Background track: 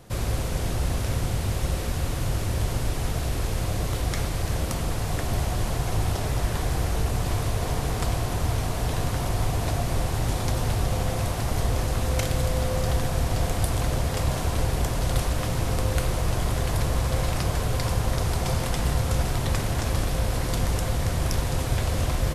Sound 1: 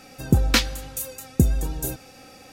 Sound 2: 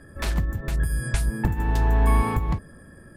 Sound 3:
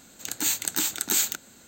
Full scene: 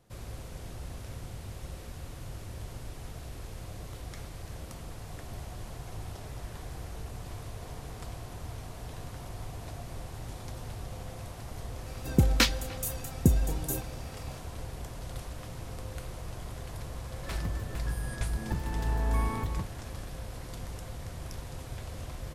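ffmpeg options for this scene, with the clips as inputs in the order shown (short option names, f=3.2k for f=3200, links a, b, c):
-filter_complex "[0:a]volume=-15.5dB[a];[1:a]asplit=2[b][c];[c]adelay=300,highpass=300,lowpass=3.4k,asoftclip=type=hard:threshold=-11.5dB,volume=-21dB[d];[b][d]amix=inputs=2:normalize=0,atrim=end=2.52,asetpts=PTS-STARTPTS,volume=-4.5dB,afade=t=in:d=0.004:c=hsin,afade=t=out:st=2.516:d=0.004:c=hsin,adelay=523026S[e];[2:a]atrim=end=3.16,asetpts=PTS-STARTPTS,volume=-9.5dB,afade=t=in:d=0.004:c=hsin,afade=t=out:st=3.156:d=0.004:c=hsin,adelay=17070[f];[a][e][f]amix=inputs=3:normalize=0"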